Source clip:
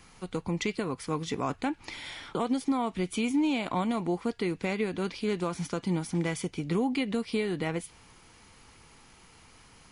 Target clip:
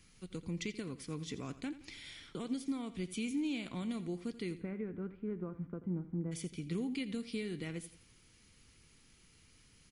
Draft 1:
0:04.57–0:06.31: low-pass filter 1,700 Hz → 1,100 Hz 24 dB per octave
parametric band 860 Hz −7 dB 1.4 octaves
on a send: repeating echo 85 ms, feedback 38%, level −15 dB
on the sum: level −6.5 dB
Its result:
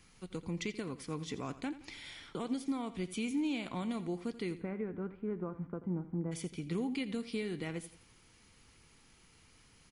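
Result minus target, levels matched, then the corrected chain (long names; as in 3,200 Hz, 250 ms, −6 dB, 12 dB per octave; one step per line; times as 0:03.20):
1,000 Hz band +5.5 dB
0:04.57–0:06.31: low-pass filter 1,700 Hz → 1,100 Hz 24 dB per octave
parametric band 860 Hz −16 dB 1.4 octaves
on a send: repeating echo 85 ms, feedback 38%, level −15 dB
on the sum: level −6.5 dB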